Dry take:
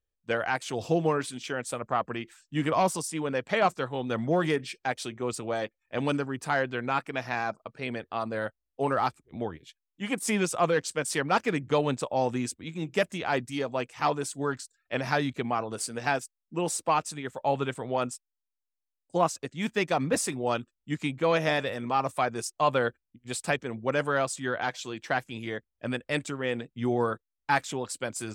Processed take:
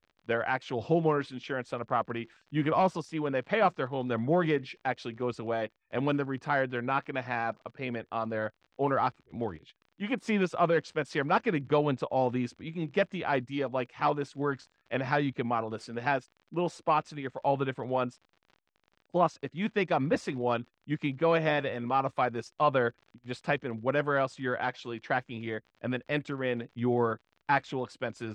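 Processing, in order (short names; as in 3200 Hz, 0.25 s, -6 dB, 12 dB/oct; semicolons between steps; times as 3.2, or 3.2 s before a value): crackle 49/s -40 dBFS; air absorption 220 m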